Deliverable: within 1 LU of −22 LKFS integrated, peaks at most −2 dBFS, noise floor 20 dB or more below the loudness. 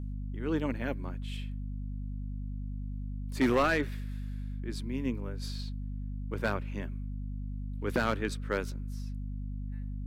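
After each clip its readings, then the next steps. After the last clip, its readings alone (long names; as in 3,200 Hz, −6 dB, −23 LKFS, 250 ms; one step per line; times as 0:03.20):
share of clipped samples 0.4%; peaks flattened at −20.0 dBFS; mains hum 50 Hz; hum harmonics up to 250 Hz; level of the hum −34 dBFS; integrated loudness −35.0 LKFS; sample peak −20.0 dBFS; target loudness −22.0 LKFS
→ clipped peaks rebuilt −20 dBFS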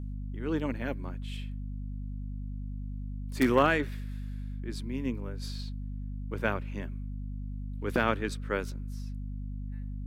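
share of clipped samples 0.0%; mains hum 50 Hz; hum harmonics up to 250 Hz; level of the hum −34 dBFS
→ hum removal 50 Hz, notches 5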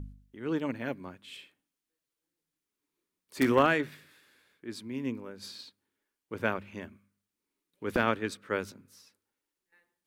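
mains hum none found; integrated loudness −31.5 LKFS; sample peak −10.5 dBFS; target loudness −22.0 LKFS
→ level +9.5 dB
brickwall limiter −2 dBFS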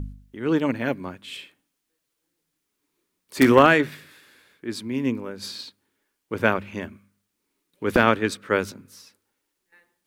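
integrated loudness −22.5 LKFS; sample peak −2.0 dBFS; background noise floor −79 dBFS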